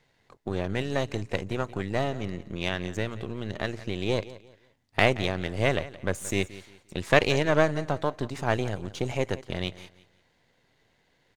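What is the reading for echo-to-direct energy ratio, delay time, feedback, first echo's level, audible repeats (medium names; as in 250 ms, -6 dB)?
-17.0 dB, 175 ms, 30%, -17.5 dB, 2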